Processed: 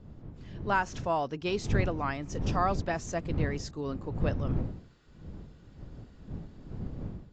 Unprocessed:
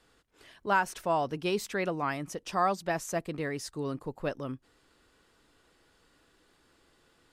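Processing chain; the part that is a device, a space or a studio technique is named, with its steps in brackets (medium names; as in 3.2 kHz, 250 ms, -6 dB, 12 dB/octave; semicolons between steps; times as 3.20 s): smartphone video outdoors (wind noise 160 Hz -34 dBFS; level rider gain up to 7.5 dB; trim -8.5 dB; AAC 48 kbps 16 kHz)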